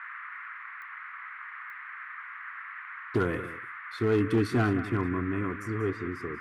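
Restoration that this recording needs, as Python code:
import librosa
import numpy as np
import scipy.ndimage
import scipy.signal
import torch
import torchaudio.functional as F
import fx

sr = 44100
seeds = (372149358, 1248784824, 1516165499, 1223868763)

y = fx.fix_declip(x, sr, threshold_db=-18.5)
y = fx.fix_declick_ar(y, sr, threshold=10.0)
y = fx.noise_reduce(y, sr, print_start_s=0.63, print_end_s=1.13, reduce_db=30.0)
y = fx.fix_echo_inverse(y, sr, delay_ms=189, level_db=-13.5)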